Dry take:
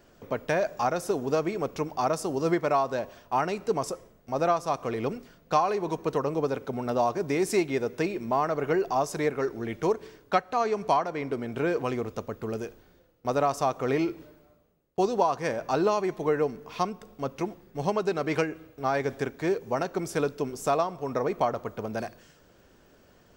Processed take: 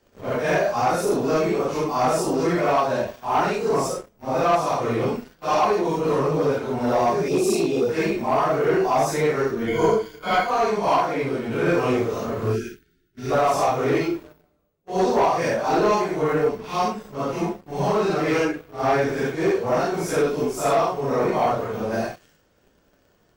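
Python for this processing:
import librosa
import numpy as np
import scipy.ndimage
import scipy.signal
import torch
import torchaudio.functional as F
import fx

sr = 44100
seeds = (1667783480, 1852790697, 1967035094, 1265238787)

y = fx.phase_scramble(x, sr, seeds[0], window_ms=200)
y = fx.cheby1_bandstop(y, sr, low_hz=840.0, high_hz=2500.0, order=4, at=(7.28, 7.89))
y = fx.leveller(y, sr, passes=2)
y = fx.ripple_eq(y, sr, per_octave=1.8, db=13, at=(9.67, 10.51))
y = fx.spec_box(y, sr, start_s=12.52, length_s=0.79, low_hz=450.0, high_hz=1300.0, gain_db=-23)
y = fx.doubler(y, sr, ms=35.0, db=-2.5, at=(11.66, 12.59), fade=0.02)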